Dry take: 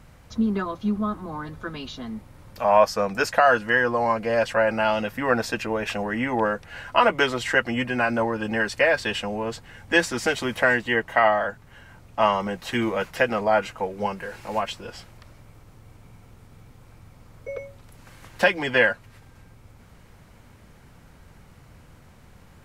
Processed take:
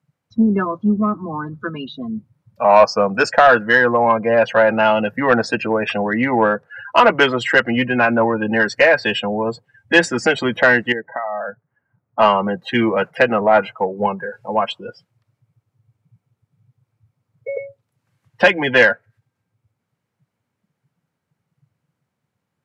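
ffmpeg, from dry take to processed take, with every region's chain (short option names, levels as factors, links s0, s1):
-filter_complex "[0:a]asettb=1/sr,asplit=3[s0][s1][s2];[s0]atrim=end=10.924[s3];[s1]atrim=start=10.92:end=12.19,asetpts=PTS-STARTPTS,afade=t=in:d=0.004:c=qsin,afade=t=out:st=1.266:d=0.004:c=qsin,lowpass=f=1800:w=0.5412,lowpass=f=1800:w=1.3066,acompressor=threshold=0.0398:ratio=8:attack=3.2:release=140:knee=1:detection=peak[s4];[s2]atrim=start=12.186[s5];[s3][s4]acrossfade=d=0.004:c1=hsin:c2=qsin[s6];[s6][s5]acrossfade=d=0.004:c1=qsin:c2=hsin,highpass=f=110:w=0.5412,highpass=f=110:w=1.3066,afftdn=nr=32:nf=-32,acontrast=85,volume=1.12"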